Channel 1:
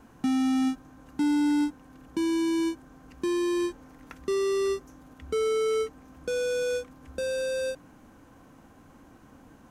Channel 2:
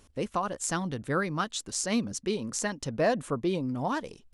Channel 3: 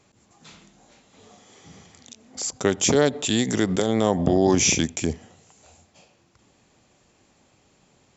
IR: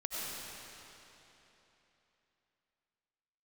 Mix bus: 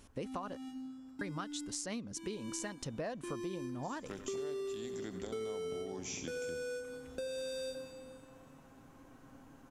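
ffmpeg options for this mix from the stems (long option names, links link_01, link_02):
-filter_complex "[0:a]aecho=1:1:7.4:0.43,volume=-7.5dB,afade=type=in:start_time=2.22:duration=0.74:silence=0.298538,asplit=3[link_01][link_02][link_03];[link_02]volume=-12dB[link_04];[link_03]volume=-10.5dB[link_05];[1:a]volume=-1dB,asplit=3[link_06][link_07][link_08];[link_06]atrim=end=0.58,asetpts=PTS-STARTPTS,afade=type=out:start_time=0.576:duration=0.004:curve=hsin[link_09];[link_07]atrim=start=0.58:end=1.21,asetpts=PTS-STARTPTS,volume=0[link_10];[link_08]atrim=start=1.21,asetpts=PTS-STARTPTS,afade=type=in:duration=0.004:curve=hsin[link_11];[link_09][link_10][link_11]concat=n=3:v=0:a=1[link_12];[2:a]adelay=1450,volume=-19.5dB,asplit=2[link_13][link_14];[link_14]volume=-13dB[link_15];[3:a]atrim=start_sample=2205[link_16];[link_04][link_16]afir=irnorm=-1:irlink=0[link_17];[link_05][link_15]amix=inputs=2:normalize=0,aecho=0:1:89|178|267|356|445|534|623|712|801:1|0.58|0.336|0.195|0.113|0.0656|0.0381|0.0221|0.0128[link_18];[link_01][link_12][link_13][link_17][link_18]amix=inputs=5:normalize=0,acompressor=threshold=-38dB:ratio=6"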